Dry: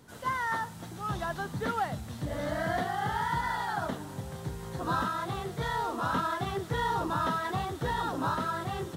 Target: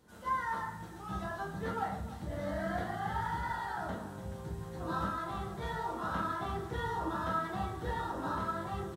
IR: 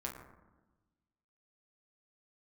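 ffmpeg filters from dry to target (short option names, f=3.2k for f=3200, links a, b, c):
-filter_complex "[0:a]aecho=1:1:300:0.168[a];[1:a]atrim=start_sample=2205,afade=t=out:st=0.21:d=0.01,atrim=end_sample=9702[b];[a][b]afir=irnorm=-1:irlink=0,volume=-6dB"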